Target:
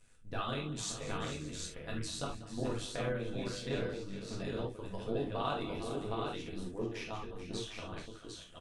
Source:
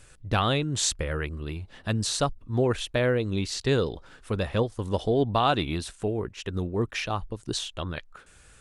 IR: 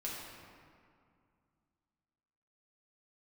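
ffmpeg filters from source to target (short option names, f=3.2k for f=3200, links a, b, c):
-filter_complex "[0:a]aecho=1:1:192|437|574|756:0.168|0.251|0.119|0.596,tremolo=f=100:d=0.889[a];[1:a]atrim=start_sample=2205,atrim=end_sample=3528[b];[a][b]afir=irnorm=-1:irlink=0,volume=-8dB"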